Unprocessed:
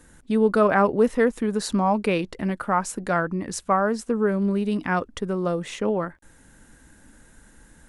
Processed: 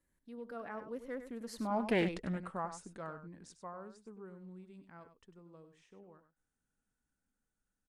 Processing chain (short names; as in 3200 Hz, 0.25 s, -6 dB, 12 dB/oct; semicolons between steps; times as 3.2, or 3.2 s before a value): Doppler pass-by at 2.06, 27 m/s, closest 4.3 m; echo 98 ms -10.5 dB; Doppler distortion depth 0.27 ms; gain -6.5 dB